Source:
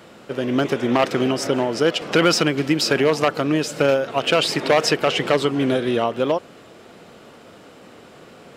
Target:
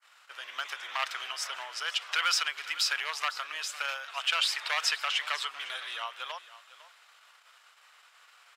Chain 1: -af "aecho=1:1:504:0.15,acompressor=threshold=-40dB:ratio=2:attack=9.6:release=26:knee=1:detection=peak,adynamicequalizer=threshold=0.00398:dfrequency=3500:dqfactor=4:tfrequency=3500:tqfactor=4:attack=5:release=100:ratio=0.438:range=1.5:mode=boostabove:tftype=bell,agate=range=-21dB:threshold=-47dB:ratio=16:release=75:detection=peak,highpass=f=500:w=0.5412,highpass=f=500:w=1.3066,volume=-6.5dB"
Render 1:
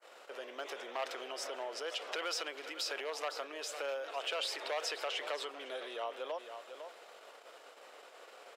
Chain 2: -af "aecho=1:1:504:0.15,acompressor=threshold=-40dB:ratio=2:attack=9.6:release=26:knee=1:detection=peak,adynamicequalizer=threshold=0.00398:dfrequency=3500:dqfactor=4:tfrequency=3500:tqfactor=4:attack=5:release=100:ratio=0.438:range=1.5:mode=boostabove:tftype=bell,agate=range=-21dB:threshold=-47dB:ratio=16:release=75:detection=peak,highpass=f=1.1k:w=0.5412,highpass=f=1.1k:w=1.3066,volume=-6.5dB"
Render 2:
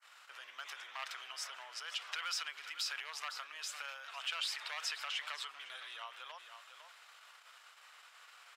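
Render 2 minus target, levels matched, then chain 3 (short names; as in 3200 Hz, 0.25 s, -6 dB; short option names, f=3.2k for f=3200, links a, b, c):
compressor: peak gain reduction +14 dB
-af "aecho=1:1:504:0.15,adynamicequalizer=threshold=0.00398:dfrequency=3500:dqfactor=4:tfrequency=3500:tqfactor=4:attack=5:release=100:ratio=0.438:range=1.5:mode=boostabove:tftype=bell,agate=range=-21dB:threshold=-47dB:ratio=16:release=75:detection=peak,highpass=f=1.1k:w=0.5412,highpass=f=1.1k:w=1.3066,volume=-6.5dB"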